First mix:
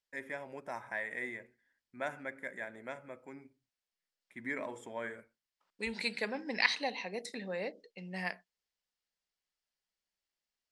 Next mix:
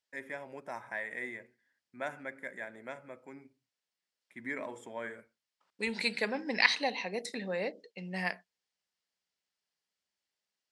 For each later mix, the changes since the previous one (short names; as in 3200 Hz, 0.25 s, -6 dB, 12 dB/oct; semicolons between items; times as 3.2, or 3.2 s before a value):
first voice: add HPF 90 Hz; second voice +3.5 dB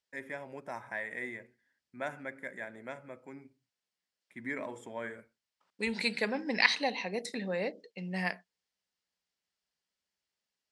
master: add low shelf 180 Hz +6.5 dB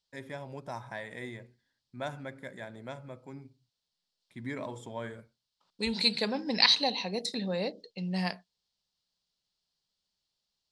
first voice: remove HPF 90 Hz; master: add graphic EQ 125/1000/2000/4000 Hz +11/+3/-9/+12 dB